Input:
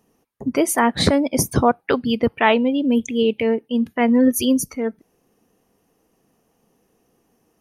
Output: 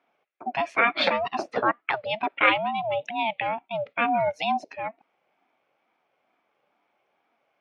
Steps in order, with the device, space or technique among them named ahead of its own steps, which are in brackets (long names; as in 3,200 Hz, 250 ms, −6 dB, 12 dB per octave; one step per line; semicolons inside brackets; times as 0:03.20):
0:00.83–0:01.34: comb filter 5.9 ms, depth 86%
voice changer toy (ring modulator whose carrier an LFO sweeps 420 Hz, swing 20%, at 2.2 Hz; loudspeaker in its box 450–3,600 Hz, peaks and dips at 620 Hz −3 dB, 930 Hz −5 dB, 2,300 Hz +7 dB)